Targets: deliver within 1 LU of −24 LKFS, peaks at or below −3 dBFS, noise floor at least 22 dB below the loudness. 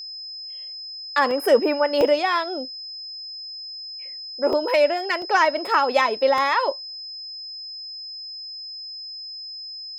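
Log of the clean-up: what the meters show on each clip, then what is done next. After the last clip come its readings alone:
number of dropouts 5; longest dropout 1.4 ms; interfering tone 5,100 Hz; level of the tone −33 dBFS; integrated loudness −23.5 LKFS; sample peak −6.0 dBFS; target loudness −24.0 LKFS
→ repair the gap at 0:01.31/0:02.01/0:04.53/0:05.22/0:06.38, 1.4 ms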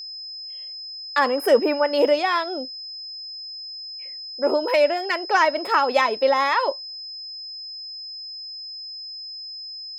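number of dropouts 0; interfering tone 5,100 Hz; level of the tone −33 dBFS
→ notch filter 5,100 Hz, Q 30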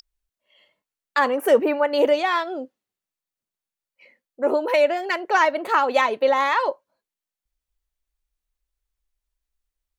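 interfering tone none found; integrated loudness −21.0 LKFS; sample peak −6.0 dBFS; target loudness −24.0 LKFS
→ level −3 dB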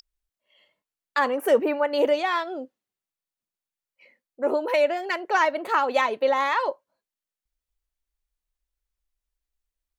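integrated loudness −24.0 LKFS; sample peak −9.0 dBFS; background noise floor −91 dBFS

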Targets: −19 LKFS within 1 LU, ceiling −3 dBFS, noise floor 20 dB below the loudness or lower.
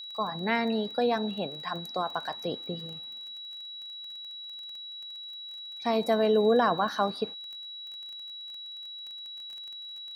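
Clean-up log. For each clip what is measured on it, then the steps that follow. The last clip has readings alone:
crackle rate 21 per second; interfering tone 3,900 Hz; level of the tone −39 dBFS; integrated loudness −31.5 LKFS; sample peak −13.0 dBFS; target loudness −19.0 LKFS
→ click removal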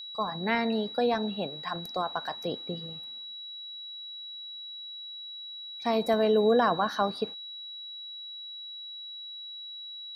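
crackle rate 0 per second; interfering tone 3,900 Hz; level of the tone −39 dBFS
→ notch filter 3,900 Hz, Q 30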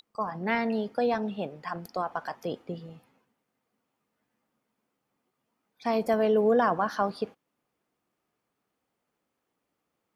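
interfering tone none found; integrated loudness −28.5 LKFS; sample peak −13.0 dBFS; target loudness −19.0 LKFS
→ level +9.5 dB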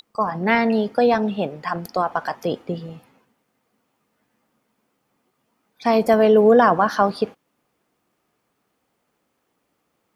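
integrated loudness −19.0 LKFS; sample peak −3.5 dBFS; background noise floor −72 dBFS

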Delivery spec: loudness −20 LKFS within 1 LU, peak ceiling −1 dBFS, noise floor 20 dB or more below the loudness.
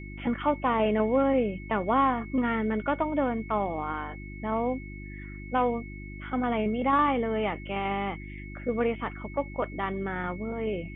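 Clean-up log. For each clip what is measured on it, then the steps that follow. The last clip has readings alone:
mains hum 50 Hz; hum harmonics up to 350 Hz; level of the hum −39 dBFS; interfering tone 2,200 Hz; level of the tone −46 dBFS; integrated loudness −28.5 LKFS; sample peak −12.5 dBFS; target loudness −20.0 LKFS
→ hum removal 50 Hz, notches 7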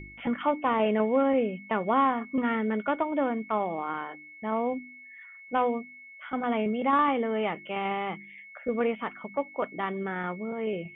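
mains hum none found; interfering tone 2,200 Hz; level of the tone −46 dBFS
→ notch filter 2,200 Hz, Q 30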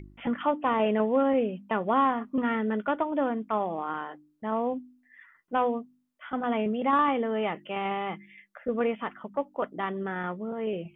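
interfering tone none found; integrated loudness −29.0 LKFS; sample peak −13.0 dBFS; target loudness −20.0 LKFS
→ level +9 dB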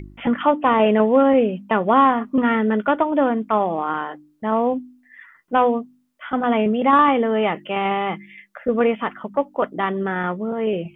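integrated loudness −20.0 LKFS; sample peak −4.0 dBFS; background noise floor −58 dBFS

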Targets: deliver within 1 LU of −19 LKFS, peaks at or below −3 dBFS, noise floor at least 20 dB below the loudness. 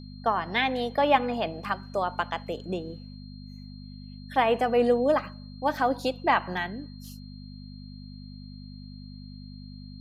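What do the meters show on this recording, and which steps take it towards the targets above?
mains hum 50 Hz; hum harmonics up to 250 Hz; level of the hum −40 dBFS; interfering tone 4,200 Hz; level of the tone −53 dBFS; integrated loudness −27.0 LKFS; sample peak −8.0 dBFS; target loudness −19.0 LKFS
→ hum removal 50 Hz, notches 5
notch filter 4,200 Hz, Q 30
level +8 dB
brickwall limiter −3 dBFS

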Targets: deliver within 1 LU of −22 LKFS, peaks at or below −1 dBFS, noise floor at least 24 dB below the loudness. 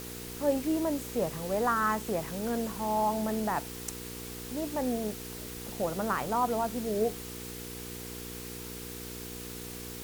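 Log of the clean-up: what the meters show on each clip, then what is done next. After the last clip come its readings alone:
mains hum 60 Hz; hum harmonics up to 480 Hz; level of the hum −42 dBFS; background noise floor −42 dBFS; target noise floor −57 dBFS; integrated loudness −32.5 LKFS; sample peak −15.5 dBFS; target loudness −22.0 LKFS
→ hum removal 60 Hz, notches 8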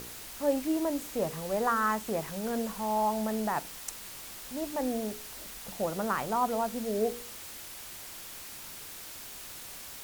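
mains hum none found; background noise floor −45 dBFS; target noise floor −57 dBFS
→ noise reduction from a noise print 12 dB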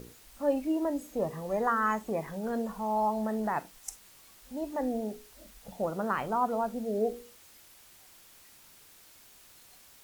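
background noise floor −57 dBFS; integrated loudness −32.0 LKFS; sample peak −15.5 dBFS; target loudness −22.0 LKFS
→ level +10 dB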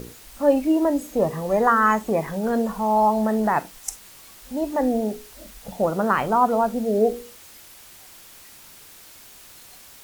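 integrated loudness −22.0 LKFS; sample peak −5.5 dBFS; background noise floor −47 dBFS

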